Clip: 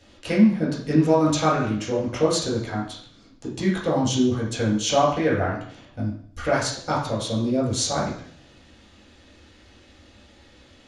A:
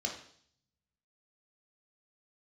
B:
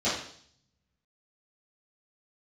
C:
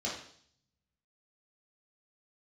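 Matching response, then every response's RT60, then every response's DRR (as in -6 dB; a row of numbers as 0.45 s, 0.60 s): C; 0.60 s, 0.60 s, 0.60 s; -0.5 dB, -13.5 dB, -6.5 dB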